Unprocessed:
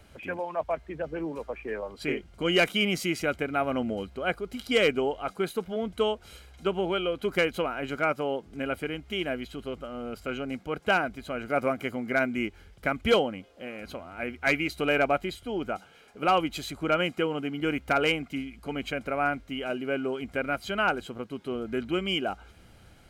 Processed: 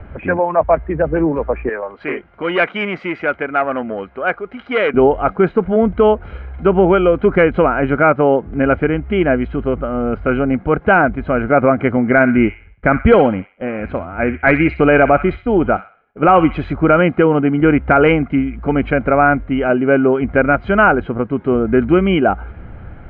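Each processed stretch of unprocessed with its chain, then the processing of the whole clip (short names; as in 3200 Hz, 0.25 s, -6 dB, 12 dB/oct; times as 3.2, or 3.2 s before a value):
1.69–4.94 HPF 1000 Hz 6 dB/oct + core saturation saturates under 2700 Hz
11.97–16.73 expander -42 dBFS + thin delay 63 ms, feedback 38%, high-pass 1800 Hz, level -8 dB
whole clip: LPF 1900 Hz 24 dB/oct; low shelf 130 Hz +7.5 dB; maximiser +17.5 dB; gain -1 dB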